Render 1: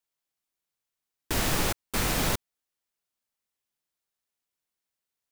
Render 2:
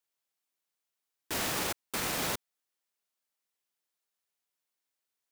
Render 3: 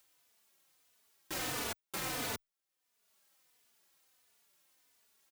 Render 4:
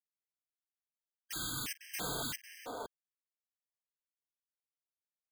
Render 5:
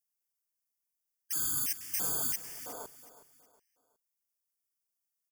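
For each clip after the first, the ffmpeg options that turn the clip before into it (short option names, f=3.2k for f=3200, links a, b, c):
-af "highpass=f=280:p=1,alimiter=limit=-23dB:level=0:latency=1:release=24"
-filter_complex "[0:a]asplit=2[a][b];[b]acompressor=mode=upward:threshold=-37dB:ratio=2.5,volume=-2.5dB[c];[a][c]amix=inputs=2:normalize=0,asplit=2[d][e];[e]adelay=3.3,afreqshift=-1.5[f];[d][f]amix=inputs=2:normalize=1,volume=-7dB"
-filter_complex "[0:a]acrossover=split=310|1200[a][b][c];[a]adelay=50[d];[b]adelay=500[e];[d][e][c]amix=inputs=3:normalize=0,acrusher=bits=7:mix=0:aa=0.000001,afftfilt=real='re*gt(sin(2*PI*1.5*pts/sr)*(1-2*mod(floor(b*sr/1024/1600),2)),0)':imag='im*gt(sin(2*PI*1.5*pts/sr)*(1-2*mod(floor(b*sr/1024/1600),2)),0)':win_size=1024:overlap=0.75,volume=3dB"
-af "aexciter=amount=2.6:drive=7.4:freq=4.5k,asuperstop=centerf=4000:order=4:qfactor=3.6,aecho=1:1:367|734|1101:0.178|0.064|0.023,volume=-3dB"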